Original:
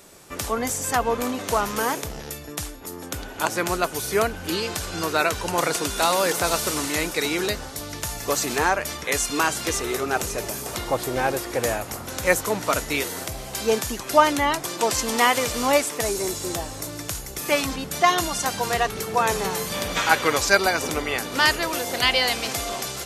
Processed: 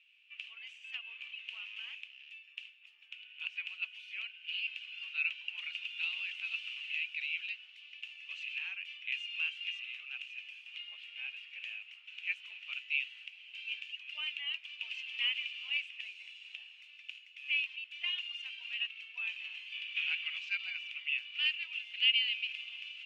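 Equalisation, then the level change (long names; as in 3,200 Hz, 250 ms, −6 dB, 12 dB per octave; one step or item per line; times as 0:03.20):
flat-topped band-pass 2,700 Hz, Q 5.3
0.0 dB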